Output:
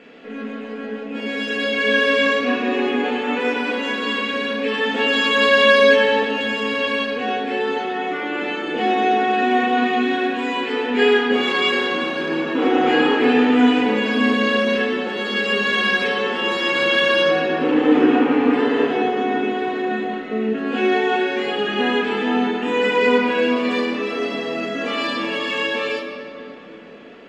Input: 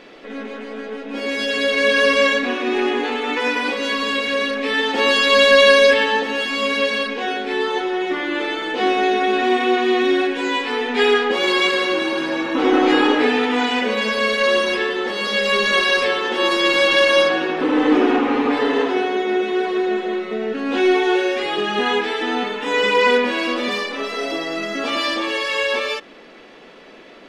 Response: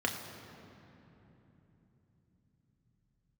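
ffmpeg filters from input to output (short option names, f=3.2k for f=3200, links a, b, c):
-filter_complex "[0:a]equalizer=f=180:t=o:w=0.95:g=2.5[a];[1:a]atrim=start_sample=2205,asetrate=41895,aresample=44100[b];[a][b]afir=irnorm=-1:irlink=0,volume=-9dB"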